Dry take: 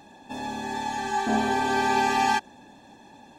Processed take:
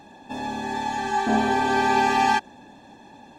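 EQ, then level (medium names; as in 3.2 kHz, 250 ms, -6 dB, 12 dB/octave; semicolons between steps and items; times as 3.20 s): treble shelf 5.8 kHz -6.5 dB; +3.0 dB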